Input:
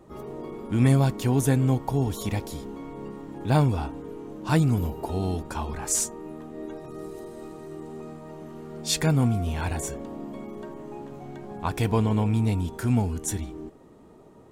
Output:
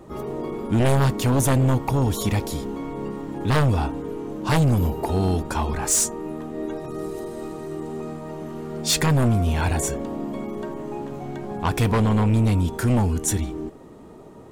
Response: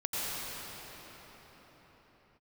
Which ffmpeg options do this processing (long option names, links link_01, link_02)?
-af "aeval=exprs='0.398*sin(PI/2*3.16*val(0)/0.398)':channel_layout=same,volume=-6.5dB"